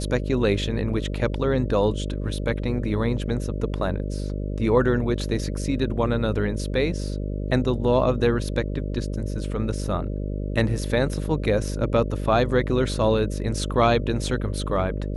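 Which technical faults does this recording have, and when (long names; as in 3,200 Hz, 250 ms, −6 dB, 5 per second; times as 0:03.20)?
mains buzz 50 Hz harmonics 12 −28 dBFS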